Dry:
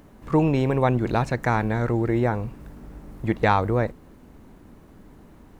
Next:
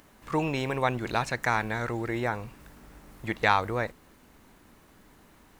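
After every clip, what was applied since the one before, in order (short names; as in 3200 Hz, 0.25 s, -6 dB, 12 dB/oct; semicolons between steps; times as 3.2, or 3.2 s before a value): tilt shelf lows -7.5 dB, about 860 Hz; gain -3.5 dB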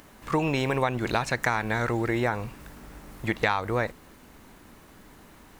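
compressor 6:1, threshold -26 dBFS, peak gain reduction 9.5 dB; gain +5.5 dB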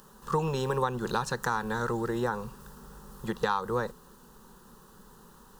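fixed phaser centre 440 Hz, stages 8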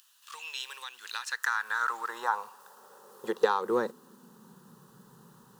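in parallel at -7 dB: crossover distortion -41 dBFS; on the sum: high-pass sweep 2700 Hz -> 130 Hz, 0.9–4.85; gain -3.5 dB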